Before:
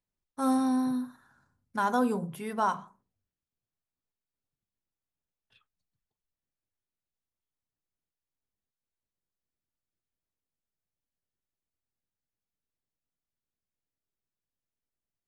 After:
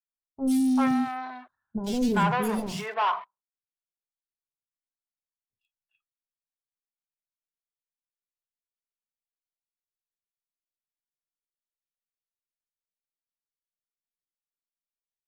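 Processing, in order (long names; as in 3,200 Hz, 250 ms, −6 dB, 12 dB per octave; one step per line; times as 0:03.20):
noise reduction from a noise print of the clip's start 16 dB
leveller curve on the samples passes 3
soft clipping −19.5 dBFS, distortion −20 dB
three-band delay without the direct sound lows, highs, mids 90/390 ms, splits 500/3,400 Hz
level +1 dB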